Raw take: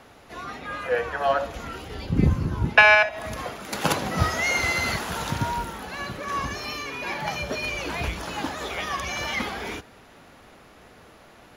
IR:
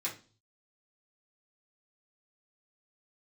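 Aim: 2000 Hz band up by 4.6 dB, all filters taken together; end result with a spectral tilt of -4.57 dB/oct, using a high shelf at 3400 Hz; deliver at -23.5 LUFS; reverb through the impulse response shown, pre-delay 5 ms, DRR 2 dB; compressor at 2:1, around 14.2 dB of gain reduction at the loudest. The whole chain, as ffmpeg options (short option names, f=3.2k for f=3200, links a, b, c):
-filter_complex "[0:a]equalizer=f=2k:t=o:g=7.5,highshelf=f=3.4k:g=-6,acompressor=threshold=-32dB:ratio=2,asplit=2[a][b];[1:a]atrim=start_sample=2205,adelay=5[c];[b][c]afir=irnorm=-1:irlink=0,volume=-5dB[d];[a][d]amix=inputs=2:normalize=0,volume=4.5dB"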